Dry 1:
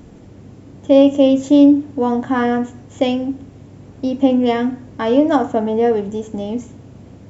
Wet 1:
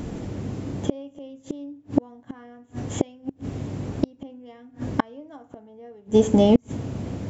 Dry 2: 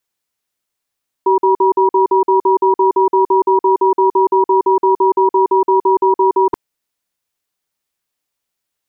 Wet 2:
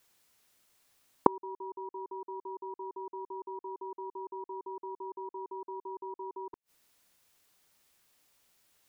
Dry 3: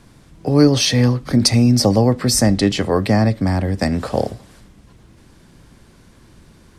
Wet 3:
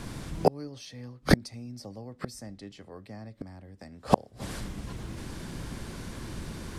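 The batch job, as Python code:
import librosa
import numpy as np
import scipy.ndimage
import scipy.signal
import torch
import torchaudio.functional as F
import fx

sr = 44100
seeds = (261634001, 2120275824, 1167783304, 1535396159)

y = fx.gate_flip(x, sr, shuts_db=-14.0, range_db=-37)
y = F.gain(torch.from_numpy(y), 8.5).numpy()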